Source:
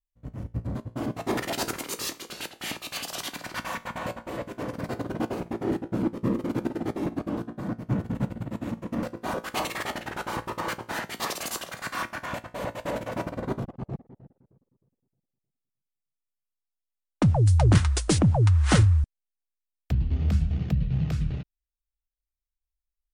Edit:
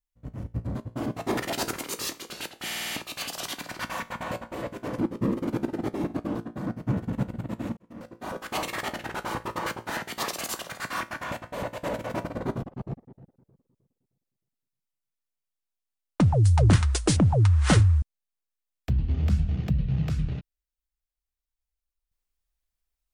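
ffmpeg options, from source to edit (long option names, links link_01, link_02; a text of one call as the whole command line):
ffmpeg -i in.wav -filter_complex "[0:a]asplit=8[link_01][link_02][link_03][link_04][link_05][link_06][link_07][link_08];[link_01]atrim=end=2.702[link_09];[link_02]atrim=start=2.648:end=2.702[link_10];[link_03]atrim=start=2.648:end=2.702[link_11];[link_04]atrim=start=2.648:end=2.702[link_12];[link_05]atrim=start=2.648:end=2.702[link_13];[link_06]atrim=start=2.648:end=4.742[link_14];[link_07]atrim=start=6.008:end=8.79,asetpts=PTS-STARTPTS,afade=type=out:start_time=2.778:duration=0.004:curve=hsin[link_15];[link_08]atrim=start=8.79,asetpts=PTS-STARTPTS,afade=type=in:duration=0.91[link_16];[link_09][link_10]acrossfade=duration=0.004:curve1=hsin:curve2=hsin[link_17];[link_17][link_11]acrossfade=duration=0.004:curve1=hsin:curve2=hsin[link_18];[link_18][link_12]acrossfade=duration=0.004:curve1=hsin:curve2=hsin[link_19];[link_19][link_13]acrossfade=duration=0.004:curve1=hsin:curve2=hsin[link_20];[link_20][link_14]acrossfade=duration=0.004:curve1=hsin:curve2=hsin[link_21];[link_15][link_16]concat=n=2:v=0:a=1[link_22];[link_21][link_22]acrossfade=duration=0.004:curve1=hsin:curve2=hsin" out.wav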